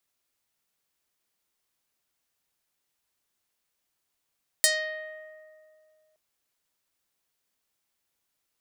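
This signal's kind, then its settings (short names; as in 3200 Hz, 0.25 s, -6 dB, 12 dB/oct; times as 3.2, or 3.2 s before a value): plucked string D#5, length 1.52 s, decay 2.38 s, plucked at 0.48, medium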